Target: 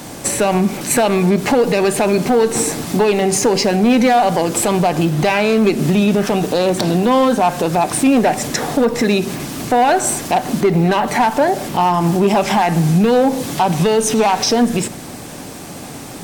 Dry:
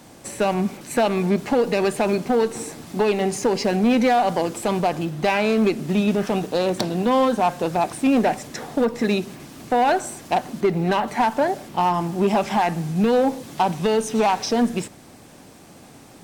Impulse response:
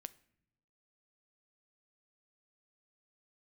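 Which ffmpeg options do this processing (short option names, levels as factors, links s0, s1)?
-filter_complex "[0:a]alimiter=limit=0.0891:level=0:latency=1:release=140,asplit=2[s0][s1];[1:a]atrim=start_sample=2205,highshelf=f=6100:g=5[s2];[s1][s2]afir=irnorm=-1:irlink=0,volume=4.22[s3];[s0][s3]amix=inputs=2:normalize=0,volume=1.5"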